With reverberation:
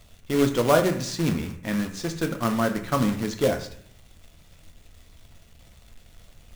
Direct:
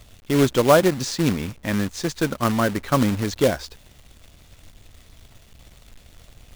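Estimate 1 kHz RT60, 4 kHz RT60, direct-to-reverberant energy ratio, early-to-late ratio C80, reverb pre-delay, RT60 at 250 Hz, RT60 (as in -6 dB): 0.55 s, 0.45 s, 5.5 dB, 13.5 dB, 4 ms, 0.80 s, 0.60 s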